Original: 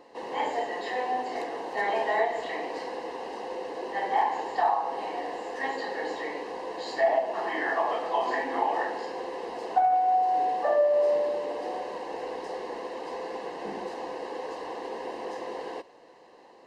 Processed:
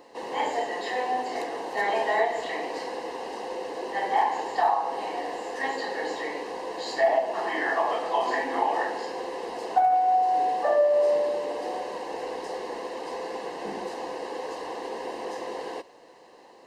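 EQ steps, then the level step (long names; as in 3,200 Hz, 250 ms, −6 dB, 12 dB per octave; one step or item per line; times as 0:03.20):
high-shelf EQ 6,300 Hz +9 dB
+1.5 dB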